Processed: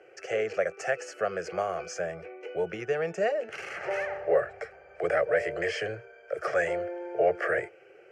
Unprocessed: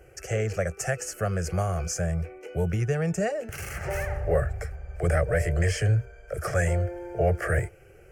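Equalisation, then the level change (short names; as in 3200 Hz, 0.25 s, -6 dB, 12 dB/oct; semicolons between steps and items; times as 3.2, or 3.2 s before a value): Chebyshev band-pass 410–3600 Hz, order 2; +1.5 dB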